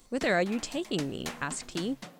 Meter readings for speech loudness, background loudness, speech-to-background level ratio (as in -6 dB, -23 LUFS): -31.5 LUFS, -43.0 LUFS, 11.5 dB